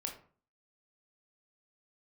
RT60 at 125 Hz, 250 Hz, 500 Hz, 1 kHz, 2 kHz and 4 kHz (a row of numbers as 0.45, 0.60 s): 0.55, 0.55, 0.45, 0.45, 0.35, 0.25 s